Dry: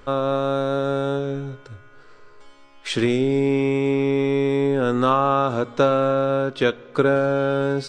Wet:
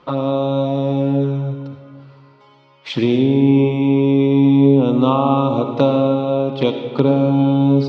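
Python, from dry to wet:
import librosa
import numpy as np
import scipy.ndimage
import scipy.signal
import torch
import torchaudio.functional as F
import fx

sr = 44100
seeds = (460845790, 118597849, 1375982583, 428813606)

y = fx.env_flanger(x, sr, rest_ms=6.2, full_db=-17.5)
y = fx.cabinet(y, sr, low_hz=120.0, low_slope=12, high_hz=4800.0, hz=(140.0, 270.0, 420.0, 930.0, 1600.0), db=(7, 5, -3, 7, -10))
y = fx.rev_freeverb(y, sr, rt60_s=1.9, hf_ratio=0.7, predelay_ms=40, drr_db=6.5)
y = y * librosa.db_to_amplitude(3.5)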